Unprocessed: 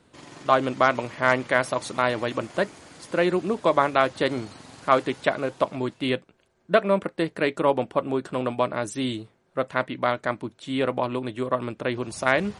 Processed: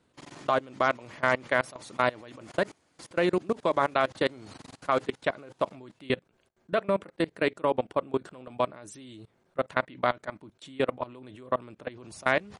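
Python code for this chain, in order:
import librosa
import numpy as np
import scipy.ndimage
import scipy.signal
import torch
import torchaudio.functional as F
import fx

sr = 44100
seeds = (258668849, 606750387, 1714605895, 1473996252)

y = fx.level_steps(x, sr, step_db=23)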